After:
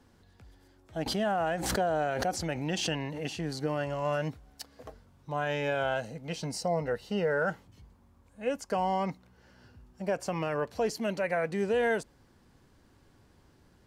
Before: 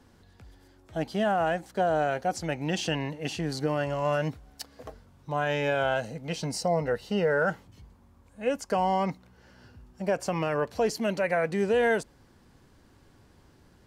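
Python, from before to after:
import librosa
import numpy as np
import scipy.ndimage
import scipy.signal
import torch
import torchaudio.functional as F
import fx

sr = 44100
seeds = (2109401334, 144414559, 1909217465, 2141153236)

y = fx.pre_swell(x, sr, db_per_s=40.0, at=(1.06, 3.26))
y = F.gain(torch.from_numpy(y), -3.5).numpy()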